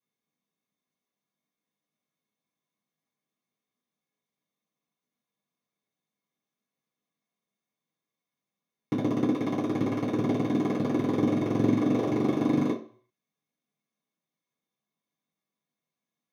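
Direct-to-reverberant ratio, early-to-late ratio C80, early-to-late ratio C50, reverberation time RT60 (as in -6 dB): -9.0 dB, 13.0 dB, 8.5 dB, 0.50 s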